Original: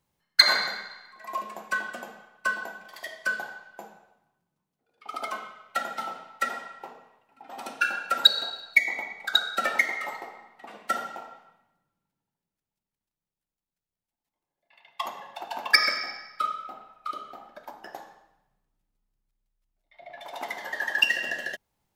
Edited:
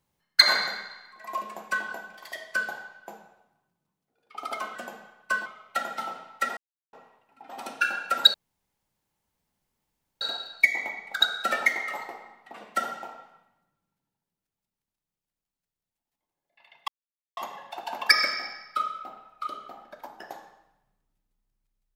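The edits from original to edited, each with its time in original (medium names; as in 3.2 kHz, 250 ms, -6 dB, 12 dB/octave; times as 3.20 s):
1.90–2.61 s: move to 5.46 s
6.57–6.93 s: mute
8.34 s: insert room tone 1.87 s
15.01 s: insert silence 0.49 s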